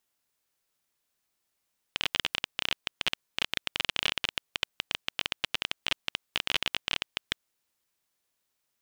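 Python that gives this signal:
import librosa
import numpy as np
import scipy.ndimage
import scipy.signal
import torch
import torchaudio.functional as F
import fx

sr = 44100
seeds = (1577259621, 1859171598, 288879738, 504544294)

y = fx.geiger_clicks(sr, seeds[0], length_s=5.41, per_s=19.0, level_db=-9.0)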